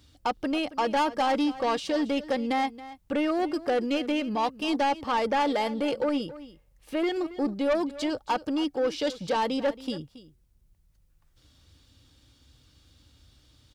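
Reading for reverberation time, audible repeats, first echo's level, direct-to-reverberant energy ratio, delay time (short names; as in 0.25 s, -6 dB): none, 1, -16.5 dB, none, 0.275 s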